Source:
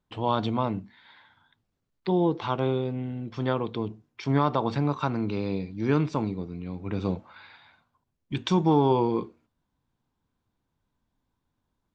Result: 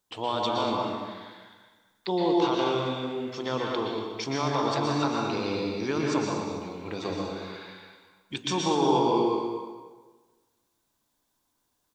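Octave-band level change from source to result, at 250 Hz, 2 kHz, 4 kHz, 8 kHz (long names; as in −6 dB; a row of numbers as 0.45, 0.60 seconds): −1.5 dB, +3.5 dB, +7.0 dB, can't be measured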